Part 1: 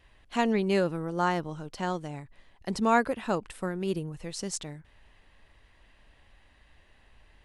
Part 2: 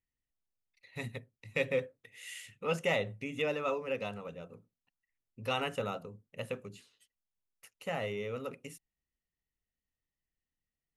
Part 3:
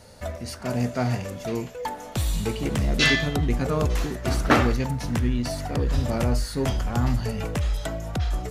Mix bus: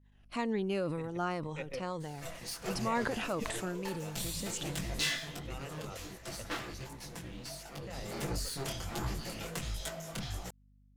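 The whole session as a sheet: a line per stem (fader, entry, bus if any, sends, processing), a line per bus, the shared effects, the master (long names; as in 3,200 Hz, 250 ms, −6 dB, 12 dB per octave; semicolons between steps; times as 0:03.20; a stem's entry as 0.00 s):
−3.0 dB, 0.00 s, no send, rippled gain that drifts along the octave scale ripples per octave 1, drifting −2 Hz, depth 9 dB; downward expander −49 dBFS; level that may fall only so fast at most 37 dB per second
−4.0 dB, 0.00 s, no send, high-shelf EQ 4,500 Hz −6.5 dB; output level in coarse steps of 10 dB; mains hum 50 Hz, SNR 16 dB
0:05.00 −5.5 dB → 0:05.50 −13.5 dB → 0:07.91 −13.5 dB → 0:08.28 −4 dB, 2.00 s, no send, lower of the sound and its delayed copy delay 5.9 ms; high-shelf EQ 2,200 Hz +11.5 dB; micro pitch shift up and down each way 49 cents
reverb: not used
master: downward compressor 1.5 to 1, threshold −42 dBFS, peak gain reduction 8.5 dB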